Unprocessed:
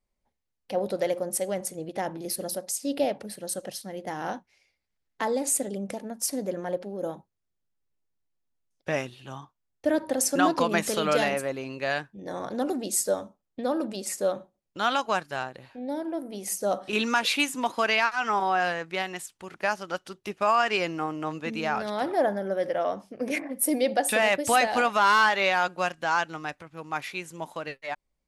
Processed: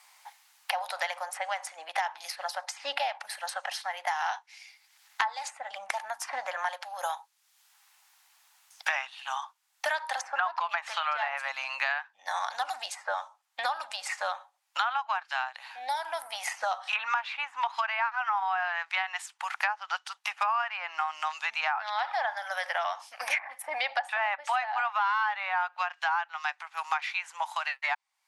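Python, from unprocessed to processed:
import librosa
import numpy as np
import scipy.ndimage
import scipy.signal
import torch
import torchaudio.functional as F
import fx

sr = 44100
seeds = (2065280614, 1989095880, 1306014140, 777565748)

y = fx.lowpass(x, sr, hz=7100.0, slope=12, at=(21.73, 22.31))
y = scipy.signal.sosfilt(scipy.signal.ellip(4, 1.0, 50, 810.0, 'highpass', fs=sr, output='sos'), y)
y = fx.env_lowpass_down(y, sr, base_hz=1400.0, full_db=-25.0)
y = fx.band_squash(y, sr, depth_pct=100)
y = y * 10.0 ** (2.5 / 20.0)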